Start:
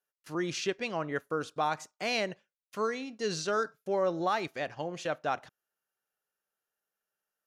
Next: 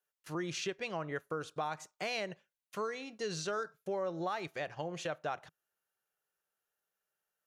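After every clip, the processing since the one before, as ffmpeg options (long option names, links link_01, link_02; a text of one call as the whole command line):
ffmpeg -i in.wav -af "equalizer=frequency=160:width_type=o:width=0.33:gain=3,equalizer=frequency=250:width_type=o:width=0.33:gain=-9,equalizer=frequency=5000:width_type=o:width=0.33:gain=-3,acompressor=threshold=-36dB:ratio=2.5" out.wav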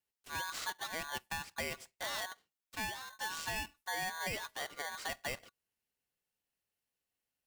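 ffmpeg -i in.wav -af "aeval=exprs='val(0)*sgn(sin(2*PI*1300*n/s))':channel_layout=same,volume=-2.5dB" out.wav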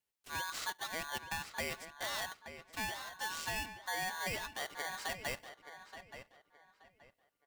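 ffmpeg -i in.wav -filter_complex "[0:a]asplit=2[link_01][link_02];[link_02]adelay=876,lowpass=frequency=3100:poles=1,volume=-10dB,asplit=2[link_03][link_04];[link_04]adelay=876,lowpass=frequency=3100:poles=1,volume=0.28,asplit=2[link_05][link_06];[link_06]adelay=876,lowpass=frequency=3100:poles=1,volume=0.28[link_07];[link_01][link_03][link_05][link_07]amix=inputs=4:normalize=0" out.wav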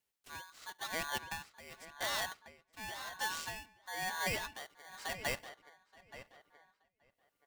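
ffmpeg -i in.wav -af "tremolo=f=0.94:d=0.9,volume=3dB" out.wav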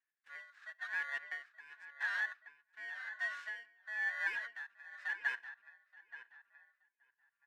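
ffmpeg -i in.wav -af "afftfilt=real='real(if(between(b,1,1008),(2*floor((b-1)/24)+1)*24-b,b),0)':imag='imag(if(between(b,1,1008),(2*floor((b-1)/24)+1)*24-b,b),0)*if(between(b,1,1008),-1,1)':win_size=2048:overlap=0.75,bandpass=frequency=1700:width_type=q:width=7:csg=0,volume=8dB" out.wav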